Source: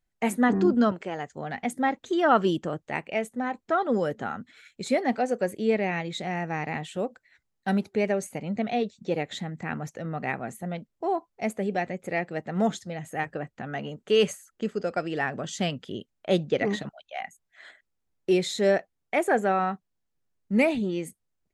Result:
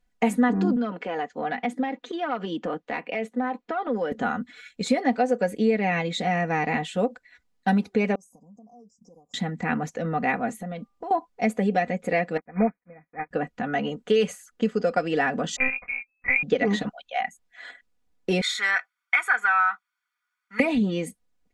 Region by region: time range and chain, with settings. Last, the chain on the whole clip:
0.76–4.12 self-modulated delay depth 0.052 ms + three-band isolator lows -17 dB, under 190 Hz, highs -15 dB, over 4900 Hz + compressor 10:1, threshold -29 dBFS
8.15–9.34 passive tone stack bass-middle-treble 5-5-5 + compressor, threshold -55 dBFS + brick-wall FIR band-stop 1200–4900 Hz
10.59–11.11 de-hum 397.8 Hz, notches 3 + compressor 12:1, threshold -36 dBFS
12.37–13.31 block floating point 3-bit + brick-wall FIR low-pass 2500 Hz + upward expander 2.5:1, over -44 dBFS
15.56–16.43 short-mantissa float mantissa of 2-bit + inverted band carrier 2600 Hz + monotone LPC vocoder at 8 kHz 260 Hz
18.41–20.6 resonant high-pass 1500 Hz, resonance Q 5.3 + bell 6900 Hz -4 dB 1.4 oct + comb 0.9 ms, depth 61%
whole clip: high shelf 9900 Hz -11.5 dB; comb 4.1 ms, depth 70%; compressor 5:1, threshold -23 dBFS; gain +5 dB

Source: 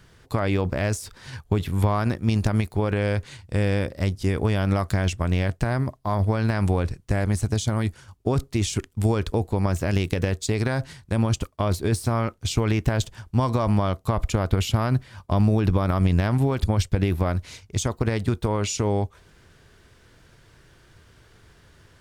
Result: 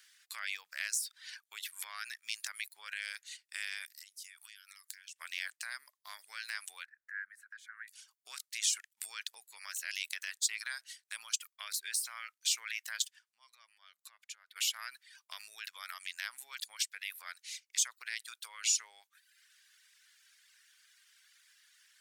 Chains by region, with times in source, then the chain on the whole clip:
3.86–5.16 HPF 1100 Hz 24 dB/oct + high shelf 5100 Hz +10.5 dB + compressor 12:1, threshold -44 dBFS
6.85–7.88 EQ curve 110 Hz 0 dB, 150 Hz +10 dB, 320 Hz +6 dB, 520 Hz -24 dB, 1000 Hz -8 dB, 1600 Hz +15 dB, 2800 Hz -17 dB, 6100 Hz -26 dB, 12000 Hz -18 dB + compressor 2:1, threshold -32 dBFS
13.11–14.56 high shelf 9200 Hz -8 dB + compressor 2.5:1, threshold -42 dBFS
whole clip: high shelf 2800 Hz +10 dB; reverb removal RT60 0.93 s; Chebyshev high-pass 1700 Hz, order 3; gain -7 dB

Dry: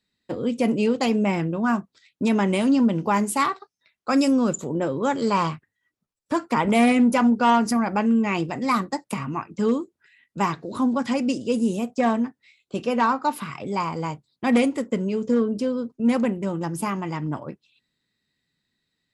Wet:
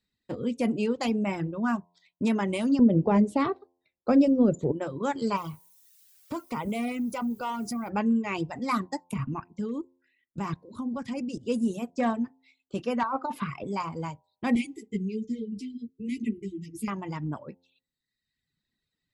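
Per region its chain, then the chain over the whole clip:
2.79–4.72 LPF 4000 Hz + resonant low shelf 780 Hz +9.5 dB, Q 1.5 + compressor 2.5:1, threshold -13 dBFS
5.36–7.88 notch 1700 Hz, Q 5.1 + compressor 2:1, threshold -27 dBFS + added noise blue -51 dBFS
9.04–11.43 low shelf 250 Hz +8 dB + level quantiser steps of 13 dB
13.03–13.64 LPF 2600 Hz 6 dB/oct + dynamic EQ 750 Hz, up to +6 dB, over -35 dBFS, Q 0.78 + negative-ratio compressor -22 dBFS
14.55–16.88 brick-wall FIR band-stop 460–1900 Hz + ensemble effect
whole clip: de-hum 87.77 Hz, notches 12; reverb removal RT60 0.99 s; low shelf 130 Hz +9 dB; gain -5.5 dB

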